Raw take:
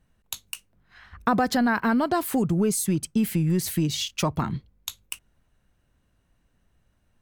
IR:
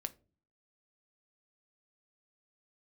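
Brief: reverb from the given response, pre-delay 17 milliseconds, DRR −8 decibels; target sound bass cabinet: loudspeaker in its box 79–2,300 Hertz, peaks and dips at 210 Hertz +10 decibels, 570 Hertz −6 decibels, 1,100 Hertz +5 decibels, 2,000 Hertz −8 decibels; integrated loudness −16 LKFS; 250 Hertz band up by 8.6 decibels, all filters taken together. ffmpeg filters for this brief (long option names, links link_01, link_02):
-filter_complex "[0:a]equalizer=frequency=250:width_type=o:gain=3.5,asplit=2[link_01][link_02];[1:a]atrim=start_sample=2205,adelay=17[link_03];[link_02][link_03]afir=irnorm=-1:irlink=0,volume=10dB[link_04];[link_01][link_04]amix=inputs=2:normalize=0,highpass=frequency=79:width=0.5412,highpass=frequency=79:width=1.3066,equalizer=frequency=210:width_type=q:width=4:gain=10,equalizer=frequency=570:width_type=q:width=4:gain=-6,equalizer=frequency=1100:width_type=q:width=4:gain=5,equalizer=frequency=2000:width_type=q:width=4:gain=-8,lowpass=frequency=2300:width=0.5412,lowpass=frequency=2300:width=1.3066,volume=-6dB"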